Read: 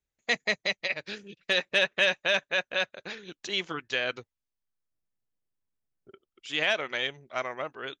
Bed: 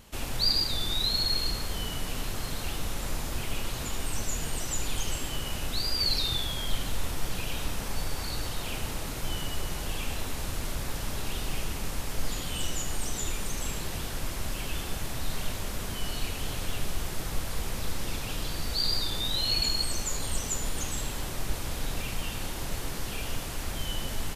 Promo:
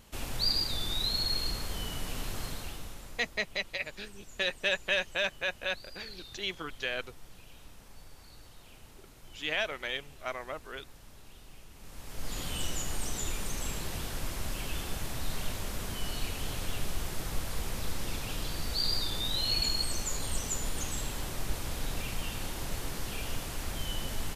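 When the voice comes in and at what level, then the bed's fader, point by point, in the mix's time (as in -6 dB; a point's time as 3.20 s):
2.90 s, -5.0 dB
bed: 2.45 s -3.5 dB
3.42 s -20 dB
11.70 s -20 dB
12.41 s -2.5 dB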